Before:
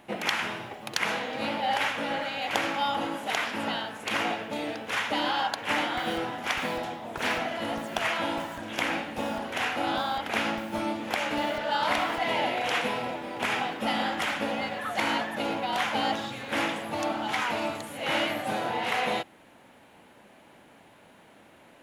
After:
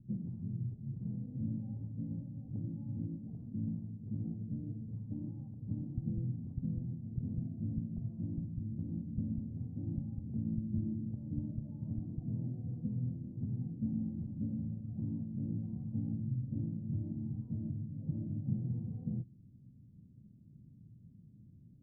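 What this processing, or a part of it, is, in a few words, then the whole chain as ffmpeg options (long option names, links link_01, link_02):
the neighbour's flat through the wall: -af "lowpass=frequency=180:width=0.5412,lowpass=frequency=180:width=1.3066,equalizer=frequency=120:width_type=o:width=0.79:gain=8,volume=5.5dB"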